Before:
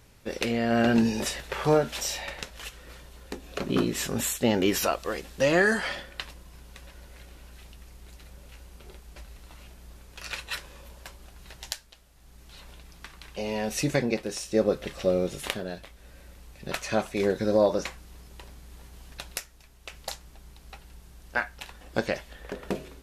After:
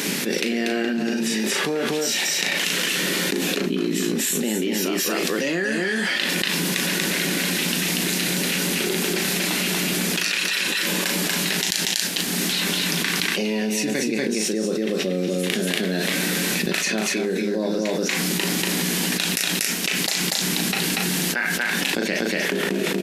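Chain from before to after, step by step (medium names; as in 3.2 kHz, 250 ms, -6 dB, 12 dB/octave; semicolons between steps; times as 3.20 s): elliptic high-pass 170 Hz; high-order bell 810 Hz -9.5 dB; doubling 37 ms -8 dB; on a send: delay 238 ms -3 dB; on the sum: level flattener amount 100%; trim -3.5 dB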